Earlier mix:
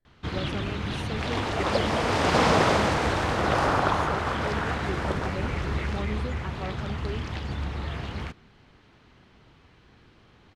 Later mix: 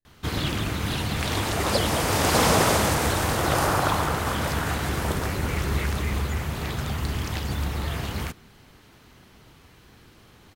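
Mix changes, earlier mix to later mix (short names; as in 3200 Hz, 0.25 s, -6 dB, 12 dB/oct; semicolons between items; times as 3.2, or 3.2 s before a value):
speech -10.0 dB; first sound +3.5 dB; master: remove LPF 4000 Hz 12 dB/oct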